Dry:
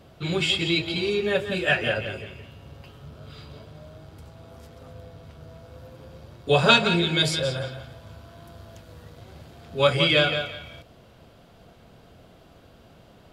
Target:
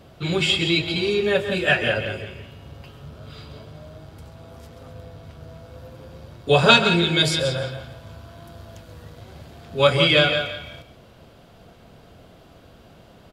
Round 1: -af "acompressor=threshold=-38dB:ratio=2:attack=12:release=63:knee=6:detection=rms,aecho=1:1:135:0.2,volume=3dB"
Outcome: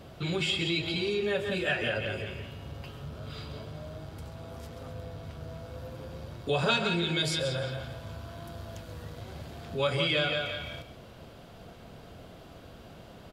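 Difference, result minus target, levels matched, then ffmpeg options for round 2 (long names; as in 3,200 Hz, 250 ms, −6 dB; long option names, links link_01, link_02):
downward compressor: peak gain reduction +14 dB
-af "aecho=1:1:135:0.2,volume=3dB"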